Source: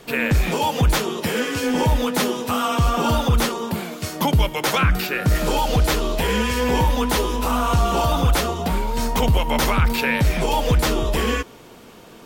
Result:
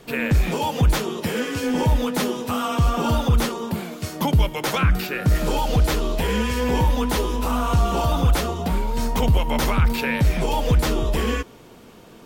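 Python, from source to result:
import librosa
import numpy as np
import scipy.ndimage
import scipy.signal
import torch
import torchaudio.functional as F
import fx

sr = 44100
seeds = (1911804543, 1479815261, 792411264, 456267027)

y = fx.low_shelf(x, sr, hz=390.0, db=4.5)
y = F.gain(torch.from_numpy(y), -4.0).numpy()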